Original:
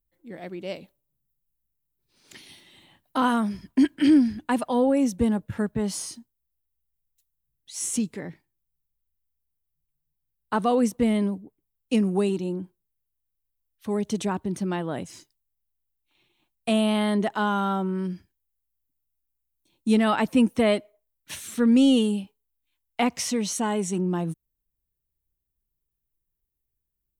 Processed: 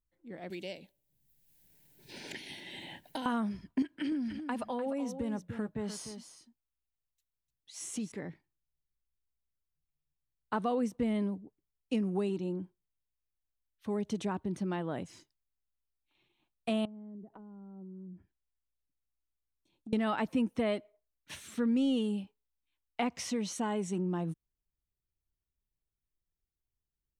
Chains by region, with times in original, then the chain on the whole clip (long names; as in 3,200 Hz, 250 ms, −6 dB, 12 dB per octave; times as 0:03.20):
0:00.50–0:03.26: Butterworth band-reject 1,200 Hz, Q 2.3 + high-shelf EQ 2,800 Hz +10.5 dB + multiband upward and downward compressor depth 100%
0:03.82–0:08.12: low-shelf EQ 200 Hz −6.5 dB + downward compressor 5 to 1, threshold −25 dBFS + single-tap delay 299 ms −10 dB
0:16.85–0:19.93: downward compressor, threshold −38 dBFS + treble cut that deepens with the level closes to 330 Hz, closed at −36.5 dBFS
whole clip: high-shelf EQ 6,700 Hz −11.5 dB; downward compressor 2 to 1, threshold −25 dBFS; level −5.5 dB